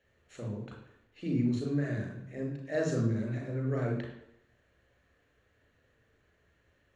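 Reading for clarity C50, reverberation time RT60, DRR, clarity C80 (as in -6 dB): 4.0 dB, 0.85 s, 0.0 dB, 7.5 dB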